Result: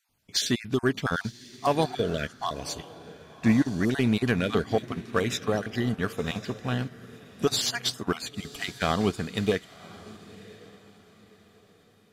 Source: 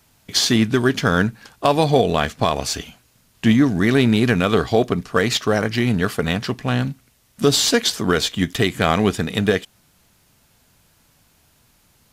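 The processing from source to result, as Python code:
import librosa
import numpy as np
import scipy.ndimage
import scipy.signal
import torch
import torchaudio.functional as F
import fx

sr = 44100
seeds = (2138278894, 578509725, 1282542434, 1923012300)

p1 = fx.spec_dropout(x, sr, seeds[0], share_pct=25)
p2 = 10.0 ** (-12.5 / 20.0) * np.tanh(p1 / 10.0 ** (-12.5 / 20.0))
p3 = p1 + F.gain(torch.from_numpy(p2), -4.0).numpy()
p4 = fx.echo_diffused(p3, sr, ms=1051, feedback_pct=40, wet_db=-12)
p5 = fx.upward_expand(p4, sr, threshold_db=-31.0, expansion=1.5)
y = F.gain(torch.from_numpy(p5), -8.5).numpy()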